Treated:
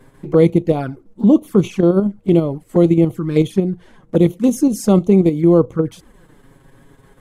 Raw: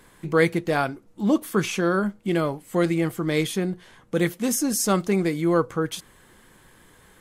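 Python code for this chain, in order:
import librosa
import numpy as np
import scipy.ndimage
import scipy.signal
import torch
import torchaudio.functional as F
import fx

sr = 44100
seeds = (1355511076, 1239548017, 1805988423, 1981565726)

p1 = fx.tilt_shelf(x, sr, db=7.0, hz=970.0)
p2 = fx.level_steps(p1, sr, step_db=17)
p3 = p1 + (p2 * librosa.db_to_amplitude(3.0))
p4 = fx.env_flanger(p3, sr, rest_ms=8.2, full_db=-10.0)
y = p4 * librosa.db_to_amplitude(-1.0)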